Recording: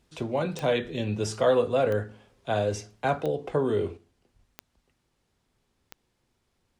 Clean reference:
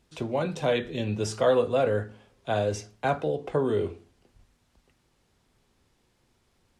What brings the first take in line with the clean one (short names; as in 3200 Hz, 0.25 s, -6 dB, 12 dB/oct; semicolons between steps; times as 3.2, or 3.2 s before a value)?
de-click; gain correction +5.5 dB, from 3.97